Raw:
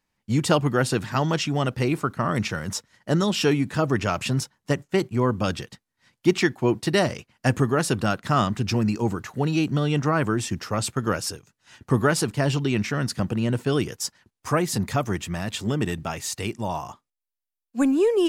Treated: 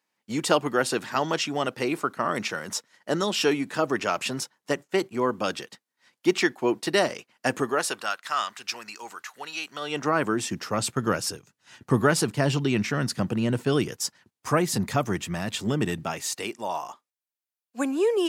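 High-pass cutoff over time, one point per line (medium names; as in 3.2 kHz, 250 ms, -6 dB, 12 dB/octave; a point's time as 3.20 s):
7.60 s 310 Hz
8.17 s 1.2 kHz
9.70 s 1.2 kHz
10.06 s 280 Hz
11.00 s 120 Hz
15.95 s 120 Hz
16.57 s 400 Hz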